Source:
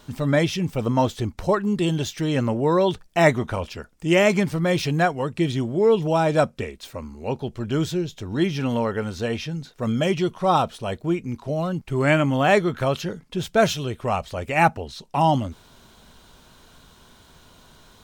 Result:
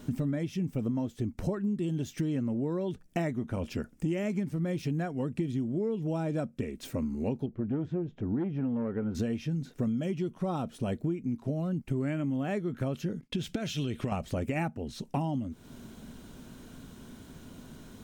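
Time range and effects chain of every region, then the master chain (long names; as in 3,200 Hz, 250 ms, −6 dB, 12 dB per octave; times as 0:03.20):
0:07.46–0:09.15: low-pass filter 1,500 Hz + low-shelf EQ 250 Hz −4.5 dB + saturating transformer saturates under 630 Hz
0:13.21–0:14.12: downward expander −48 dBFS + parametric band 3,400 Hz +11 dB 2 octaves + downward compressor 10 to 1, threshold −27 dBFS
whole clip: graphic EQ with 10 bands 125 Hz +4 dB, 250 Hz +11 dB, 1,000 Hz −6 dB, 4,000 Hz −7 dB; downward compressor 12 to 1, threshold −28 dBFS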